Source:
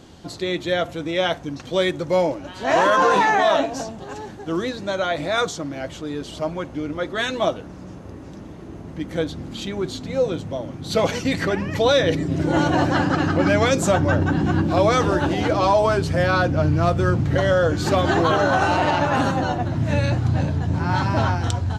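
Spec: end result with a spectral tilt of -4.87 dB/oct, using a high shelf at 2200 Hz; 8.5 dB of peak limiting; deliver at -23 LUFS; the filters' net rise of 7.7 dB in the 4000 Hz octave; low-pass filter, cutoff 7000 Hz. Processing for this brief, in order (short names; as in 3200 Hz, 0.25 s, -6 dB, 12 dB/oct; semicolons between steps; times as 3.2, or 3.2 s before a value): LPF 7000 Hz; high shelf 2200 Hz +7 dB; bell 4000 Hz +3.5 dB; gain -1 dB; limiter -12.5 dBFS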